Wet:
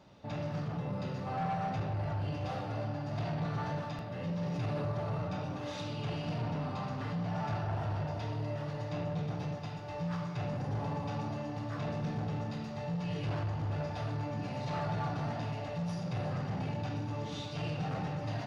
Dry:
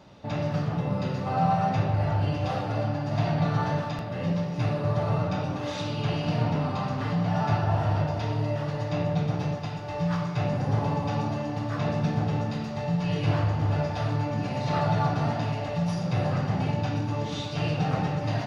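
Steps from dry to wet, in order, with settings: soft clip -22 dBFS, distortion -15 dB; 4.41–4.92 fast leveller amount 70%; gain -7 dB

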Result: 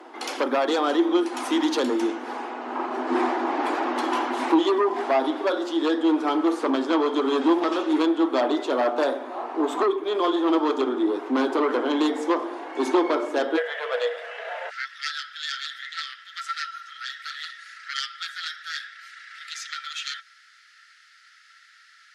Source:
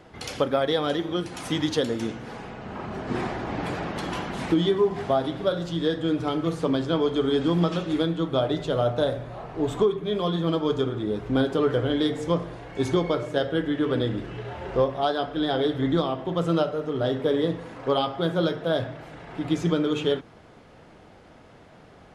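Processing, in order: sine folder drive 7 dB, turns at -10.5 dBFS; rippled Chebyshev high-pass 240 Hz, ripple 9 dB, from 13.56 s 460 Hz, from 14.69 s 1300 Hz

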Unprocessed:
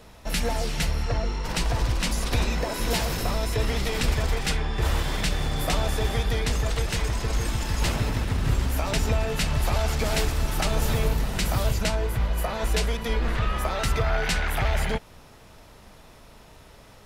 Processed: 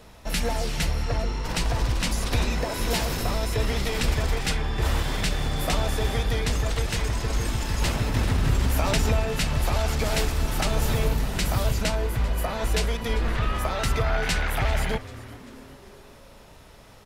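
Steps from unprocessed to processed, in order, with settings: frequency-shifting echo 0.391 s, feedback 52%, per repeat -150 Hz, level -18 dB; 8.14–9.2 fast leveller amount 50%

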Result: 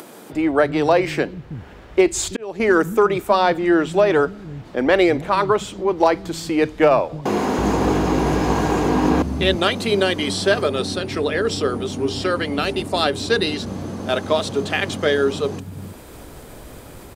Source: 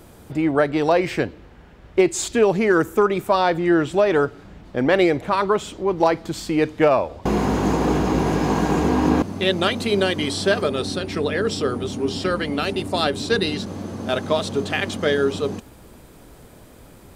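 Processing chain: upward compressor, threshold -32 dBFS; bands offset in time highs, lows 0.33 s, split 190 Hz; 2.02–2.6 auto swell 0.551 s; gain +2 dB

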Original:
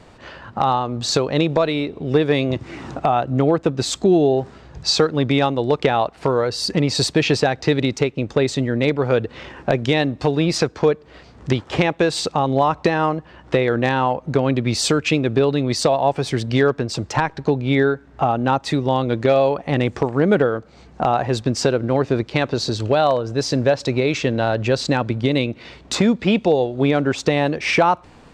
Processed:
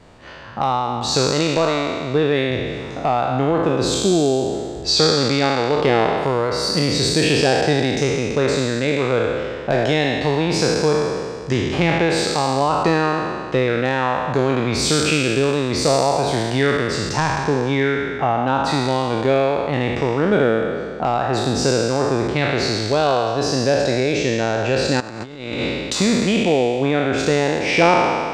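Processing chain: spectral trails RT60 1.97 s; 25–25.93 negative-ratio compressor -22 dBFS, ratio -0.5; gain -3.5 dB

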